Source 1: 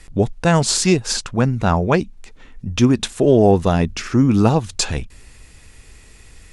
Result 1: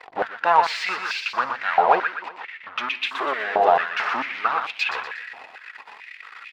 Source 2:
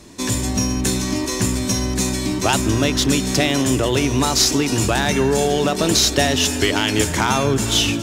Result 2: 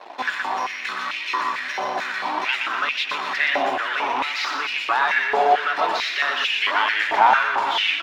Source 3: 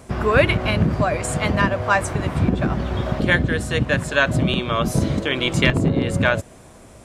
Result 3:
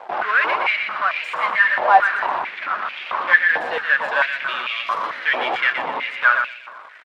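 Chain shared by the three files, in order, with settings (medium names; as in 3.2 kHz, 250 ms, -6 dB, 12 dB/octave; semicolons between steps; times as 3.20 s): median filter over 3 samples; in parallel at -4.5 dB: fuzz box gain 36 dB, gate -42 dBFS; on the sum: flange 1.6 Hz, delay 1.8 ms, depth 3.1 ms, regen +52%; distance through air 360 m; feedback delay 121 ms, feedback 44%, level -6 dB; step-sequenced high-pass 4.5 Hz 770–2500 Hz; trim -1 dB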